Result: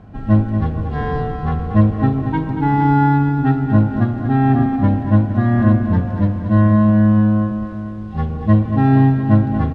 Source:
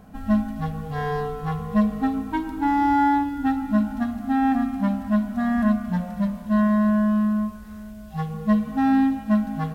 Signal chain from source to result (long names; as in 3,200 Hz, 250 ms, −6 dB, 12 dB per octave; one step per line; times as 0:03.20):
sub-octave generator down 1 octave, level +3 dB
low-pass filter 3,600 Hz 12 dB per octave
on a send: repeating echo 232 ms, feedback 54%, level −9 dB
on the sum: level +3 dB